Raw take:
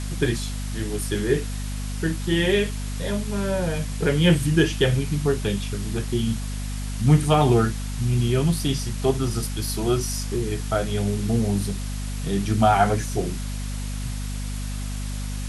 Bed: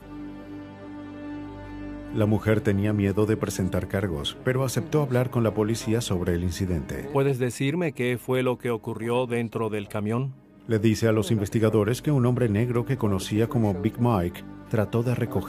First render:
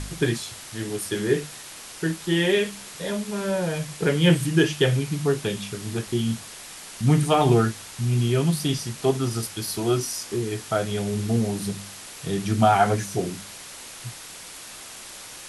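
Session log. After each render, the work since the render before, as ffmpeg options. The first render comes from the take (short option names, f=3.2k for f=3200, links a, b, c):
-af "bandreject=f=50:t=h:w=4,bandreject=f=100:t=h:w=4,bandreject=f=150:t=h:w=4,bandreject=f=200:t=h:w=4,bandreject=f=250:t=h:w=4"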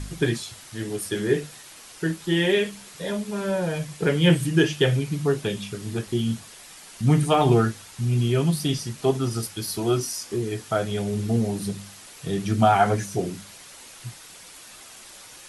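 -af "afftdn=nr=6:nf=-41"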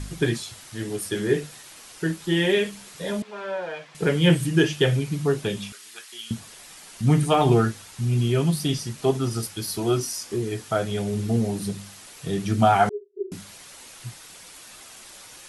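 -filter_complex "[0:a]asettb=1/sr,asplit=3[a][b][c];[a]atrim=end=3.224[d];[b]atrim=start=3.22:end=3.95,asetpts=PTS-STARTPTS,afade=t=in:d=0.004:c=qsin,afade=t=out:st=0.726:d=0.004:c=qsin,highpass=580,lowpass=3.1k[e];[c]atrim=start=3.946[f];[d][e]acrossfade=d=0.004:c1=hsin:c2=qsin[g];[g][f]acrossfade=d=0.004:c1=qsin:c2=hsin,asettb=1/sr,asplit=3[h][i][j];[h]atrim=end=5.724[k];[i]atrim=start=5.72:end=6.31,asetpts=PTS-STARTPTS,afade=t=in:d=0.004:c=qsin,afade=t=out:st=0.586:d=0.004:c=qsin,highpass=1.5k[l];[j]atrim=start=6.306[m];[k][l]acrossfade=d=0.004:c1=hsin:c2=qsin[n];[n][m]acrossfade=d=0.004:c1=qsin:c2=hsin,asettb=1/sr,asplit=3[o][p][q];[o]atrim=end=12.894[r];[p]atrim=start=12.89:end=13.32,asetpts=PTS-STARTPTS,afade=t=in:d=0.004:c=qsin,afade=t=out:st=0.426:d=0.004:c=qsin,asuperpass=centerf=390:order=8:qfactor=7.5[s];[q]atrim=start=13.316[t];[r][s]acrossfade=d=0.004:c1=hsin:c2=qsin[u];[u][t]acrossfade=d=0.004:c1=qsin:c2=hsin"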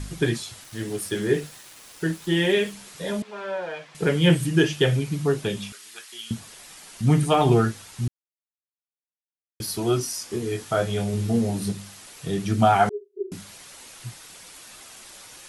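-filter_complex "[0:a]asettb=1/sr,asplit=3[a][b][c];[a]atrim=end=0.644[d];[b]atrim=start=0.64:end=2.73,asetpts=PTS-STARTPTS,afade=t=in:d=0.004:c=qsin,afade=t=out:st=2.086:d=0.004:c=qsin,aeval=exprs='val(0)*gte(abs(val(0)),0.00631)':c=same[e];[c]atrim=start=2.726[f];[d][e]acrossfade=d=0.004:c1=hsin:c2=qsin[g];[g][f]acrossfade=d=0.004:c1=qsin:c2=hsin,asettb=1/sr,asplit=3[h][i][j];[h]atrim=end=10.314[k];[i]atrim=start=10.31:end=11.72,asetpts=PTS-STARTPTS,afade=t=in:d=0.004:c=qsin,afade=t=out:st=1.406:d=0.004:c=qsin,asplit=2[l][m];[m]adelay=21,volume=-5dB[n];[l][n]amix=inputs=2:normalize=0,atrim=end_sample=62181[o];[j]atrim=start=11.716[p];[k][o]acrossfade=d=0.004:c1=hsin:c2=qsin[q];[q][p]acrossfade=d=0.004:c1=qsin:c2=hsin,asplit=3[r][s][t];[r]atrim=end=8.08,asetpts=PTS-STARTPTS,afade=t=out:st=8.076:d=0.004:c=hsin[u];[s]atrim=start=8.08:end=9.6,asetpts=PTS-STARTPTS,volume=0[v];[t]atrim=start=9.6,asetpts=PTS-STARTPTS,afade=t=in:d=0.004:c=hsin[w];[u][v][w]concat=n=3:v=0:a=1"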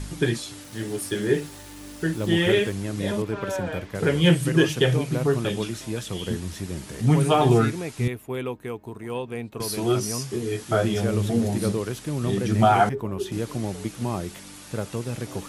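-filter_complex "[1:a]volume=-6dB[a];[0:a][a]amix=inputs=2:normalize=0"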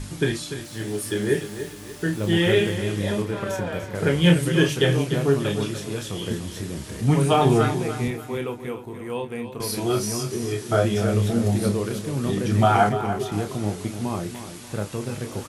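-filter_complex "[0:a]asplit=2[a][b];[b]adelay=29,volume=-7dB[c];[a][c]amix=inputs=2:normalize=0,aecho=1:1:294|588|882|1176:0.299|0.113|0.0431|0.0164"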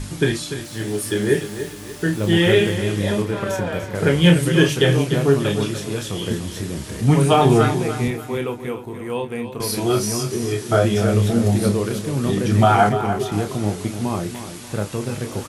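-af "volume=4dB,alimiter=limit=-3dB:level=0:latency=1"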